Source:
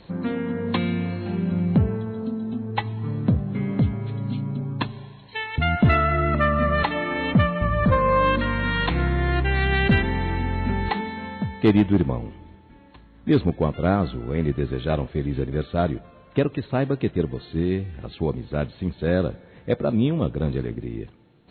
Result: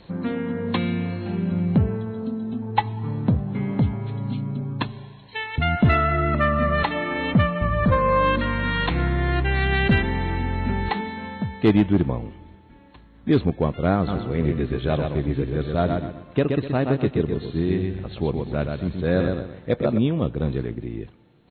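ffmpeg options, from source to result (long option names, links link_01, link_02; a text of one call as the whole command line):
ffmpeg -i in.wav -filter_complex "[0:a]asettb=1/sr,asplit=3[link_01][link_02][link_03];[link_01]atrim=end=2.624[link_04];[link_02]atrim=start=2.62:end=4.34,asetpts=PTS-STARTPTS,afade=type=in:duration=0.004:curve=qsin,afade=type=out:start_time=1.716:duration=0.004:curve=qsin,equalizer=frequency=870:width_type=o:width=0.23:gain=9.5[link_05];[link_03]atrim=start=4.336[link_06];[link_04][link_05]acrossfade=duration=0.004:curve1=hsin:curve2=qsin[link_07];[link_07][link_06]acrossfade=duration=0.004:curve1=qsin:curve2=hsin,asplit=3[link_08][link_09][link_10];[link_08]afade=type=out:start_time=14.07:duration=0.02[link_11];[link_09]aecho=1:1:125|250|375|500:0.596|0.197|0.0649|0.0214,afade=type=in:start_time=14.07:duration=0.02,afade=type=out:start_time=19.97:duration=0.02[link_12];[link_10]afade=type=in:start_time=19.97:duration=0.02[link_13];[link_11][link_12][link_13]amix=inputs=3:normalize=0" out.wav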